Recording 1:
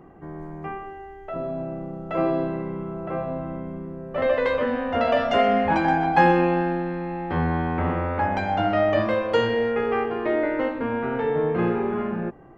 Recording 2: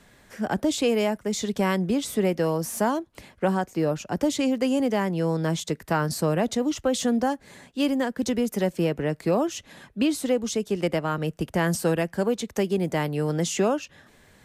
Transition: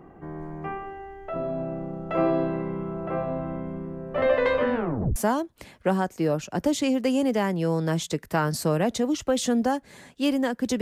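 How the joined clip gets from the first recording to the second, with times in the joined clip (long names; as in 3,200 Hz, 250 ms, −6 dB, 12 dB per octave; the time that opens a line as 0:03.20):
recording 1
0:04.74: tape stop 0.42 s
0:05.16: continue with recording 2 from 0:02.73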